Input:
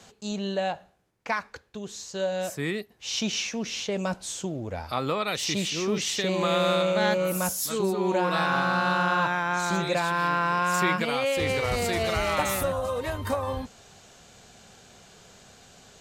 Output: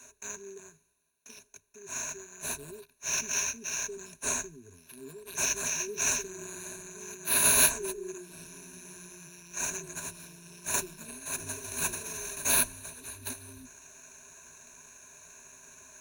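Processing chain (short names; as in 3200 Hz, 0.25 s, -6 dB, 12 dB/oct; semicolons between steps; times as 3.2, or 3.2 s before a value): brick-wall FIR band-stop 460–5200 Hz; pre-emphasis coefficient 0.97; in parallel at -5 dB: sample-rate reducer 8400 Hz, jitter 20%; on the sum: ripple EQ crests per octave 1.5, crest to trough 16 dB; gain +3 dB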